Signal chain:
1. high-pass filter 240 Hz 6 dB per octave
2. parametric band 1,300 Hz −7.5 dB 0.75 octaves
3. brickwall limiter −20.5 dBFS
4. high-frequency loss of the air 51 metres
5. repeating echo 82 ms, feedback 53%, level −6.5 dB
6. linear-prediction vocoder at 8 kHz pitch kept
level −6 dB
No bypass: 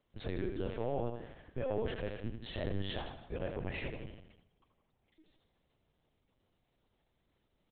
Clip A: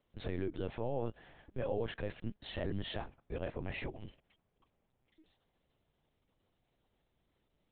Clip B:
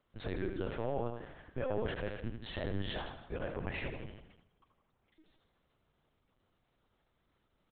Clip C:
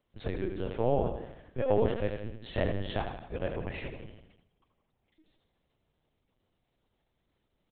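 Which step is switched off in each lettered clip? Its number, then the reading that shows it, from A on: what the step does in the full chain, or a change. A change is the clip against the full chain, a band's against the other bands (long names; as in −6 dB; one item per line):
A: 5, change in momentary loudness spread −2 LU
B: 2, 2 kHz band +2.5 dB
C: 3, average gain reduction 2.5 dB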